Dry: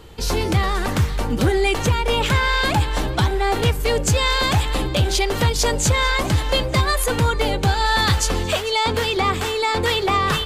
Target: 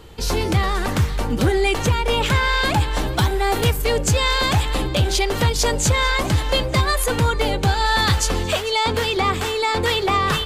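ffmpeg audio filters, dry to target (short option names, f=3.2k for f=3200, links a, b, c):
-filter_complex "[0:a]asettb=1/sr,asplit=3[a][b][c];[a]atrim=end=3.064[d];[b]atrim=start=3.06:end=3.82,asetpts=PTS-STARTPTS,afade=t=in:d=0.004:c=qsin,afade=t=out:st=0.756:d=0.004:c=qsin,highshelf=f=9.9k:g=11.5[e];[c]atrim=start=3.816[f];[d][e]acrossfade=d=0.004:c1=hsin:c2=qsin[g];[g][f]acrossfade=d=0.004:c1=qsin:c2=hsin"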